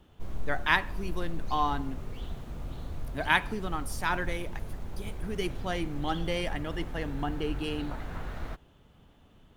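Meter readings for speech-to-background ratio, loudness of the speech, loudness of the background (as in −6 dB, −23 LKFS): 9.5 dB, −32.0 LKFS, −41.5 LKFS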